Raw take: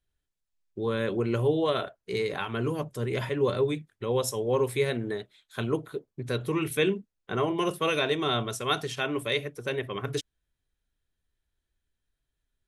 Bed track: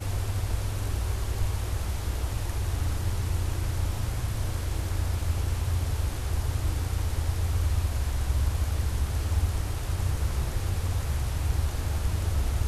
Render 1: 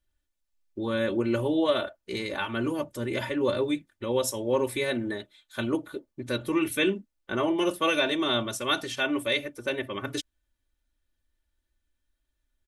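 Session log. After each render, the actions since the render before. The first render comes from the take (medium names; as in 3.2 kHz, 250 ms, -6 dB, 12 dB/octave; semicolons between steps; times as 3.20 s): comb 3.4 ms, depth 73%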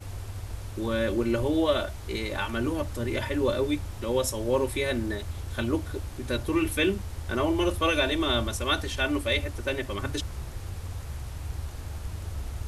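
add bed track -8 dB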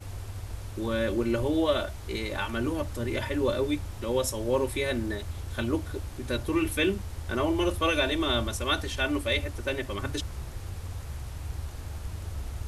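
trim -1 dB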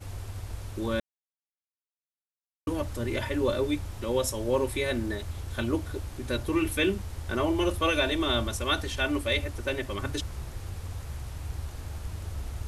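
1.00–2.67 s: mute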